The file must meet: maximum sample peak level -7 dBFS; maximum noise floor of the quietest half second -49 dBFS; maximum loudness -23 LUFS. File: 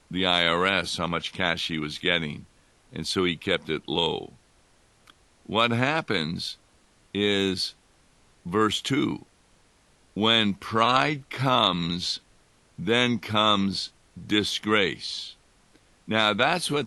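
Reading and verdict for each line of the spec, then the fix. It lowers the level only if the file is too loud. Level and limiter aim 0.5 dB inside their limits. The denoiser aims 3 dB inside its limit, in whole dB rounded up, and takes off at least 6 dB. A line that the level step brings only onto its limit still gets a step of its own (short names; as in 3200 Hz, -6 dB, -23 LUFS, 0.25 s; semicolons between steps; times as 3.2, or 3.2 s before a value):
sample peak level -6.0 dBFS: fail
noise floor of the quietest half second -61 dBFS: OK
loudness -24.5 LUFS: OK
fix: limiter -7.5 dBFS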